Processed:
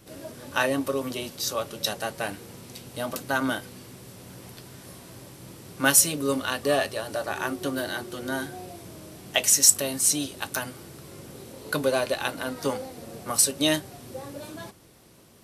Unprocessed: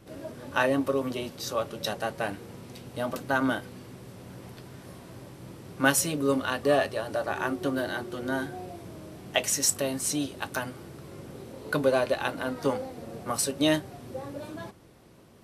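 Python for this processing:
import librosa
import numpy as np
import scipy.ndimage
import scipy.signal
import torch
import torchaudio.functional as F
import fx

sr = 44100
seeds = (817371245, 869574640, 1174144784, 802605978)

y = fx.high_shelf(x, sr, hz=3300.0, db=11.0)
y = y * librosa.db_to_amplitude(-1.0)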